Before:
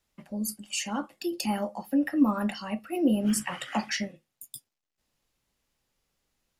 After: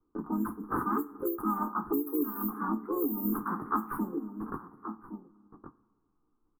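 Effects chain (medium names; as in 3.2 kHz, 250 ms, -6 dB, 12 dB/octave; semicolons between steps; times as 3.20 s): gate with hold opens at -49 dBFS; peaking EQ 80 Hz -12 dB 1.5 oct; delay 1120 ms -23 dB; careless resampling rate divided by 6×, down none, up zero stuff; elliptic band-stop 1–9.7 kHz, stop band 80 dB; small resonant body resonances 300/3100 Hz, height 18 dB, ringing for 50 ms; reverberation, pre-delay 3 ms, DRR 8.5 dB; harmony voices +3 st -7 dB, +7 st -2 dB; level-controlled noise filter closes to 920 Hz, open at -10.5 dBFS; compression 4:1, threshold -24 dBFS, peak gain reduction 20.5 dB; FFT filter 120 Hz 0 dB, 390 Hz -9 dB, 570 Hz -23 dB, 1.2 kHz +7 dB, 2.6 kHz -24 dB, 8.3 kHz -21 dB, 14 kHz -1 dB; three bands compressed up and down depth 70%; trim +2.5 dB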